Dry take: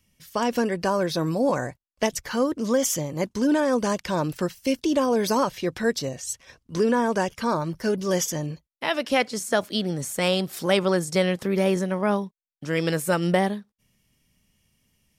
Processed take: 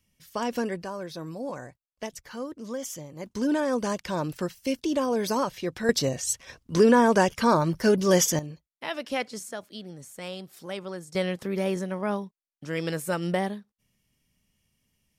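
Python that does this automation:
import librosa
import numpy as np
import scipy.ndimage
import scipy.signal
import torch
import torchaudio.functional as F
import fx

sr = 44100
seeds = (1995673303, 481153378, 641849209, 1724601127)

y = fx.gain(x, sr, db=fx.steps((0.0, -5.0), (0.83, -12.0), (3.26, -4.0), (5.89, 3.5), (8.39, -7.5), (9.51, -14.5), (11.15, -5.5)))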